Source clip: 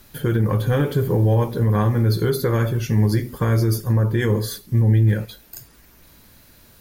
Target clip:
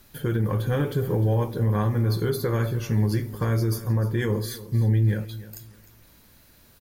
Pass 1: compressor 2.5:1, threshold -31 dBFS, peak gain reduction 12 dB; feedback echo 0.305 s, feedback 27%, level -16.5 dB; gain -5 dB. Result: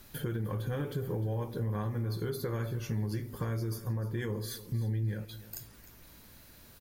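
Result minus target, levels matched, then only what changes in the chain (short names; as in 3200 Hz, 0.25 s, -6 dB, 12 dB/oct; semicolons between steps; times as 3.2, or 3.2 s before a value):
compressor: peak gain reduction +12 dB
remove: compressor 2.5:1, threshold -31 dBFS, peak gain reduction 12 dB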